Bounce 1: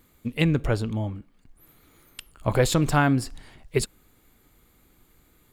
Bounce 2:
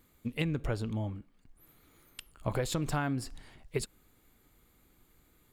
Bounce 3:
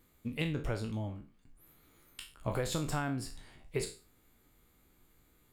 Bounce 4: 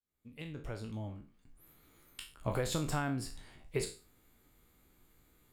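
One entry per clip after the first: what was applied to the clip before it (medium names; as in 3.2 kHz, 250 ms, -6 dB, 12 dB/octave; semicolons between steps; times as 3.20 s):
compression 6:1, threshold -22 dBFS, peak gain reduction 8 dB; trim -5.5 dB
spectral sustain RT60 0.35 s; trim -3 dB
fade-in on the opening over 1.56 s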